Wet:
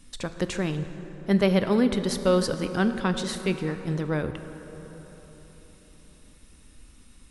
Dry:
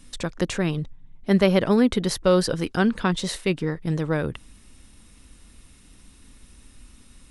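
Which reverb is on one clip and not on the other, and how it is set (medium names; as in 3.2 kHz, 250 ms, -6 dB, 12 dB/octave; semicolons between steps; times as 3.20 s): plate-style reverb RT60 4.3 s, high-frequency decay 0.45×, DRR 8.5 dB; trim -3.5 dB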